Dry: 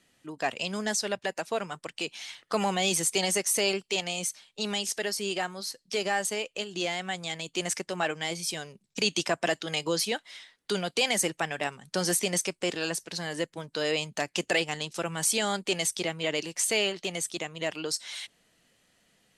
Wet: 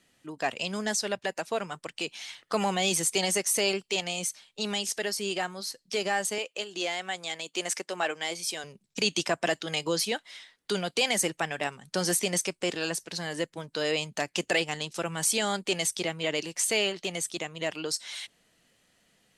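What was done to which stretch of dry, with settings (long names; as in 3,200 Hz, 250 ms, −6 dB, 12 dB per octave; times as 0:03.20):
0:06.38–0:08.64: high-pass filter 310 Hz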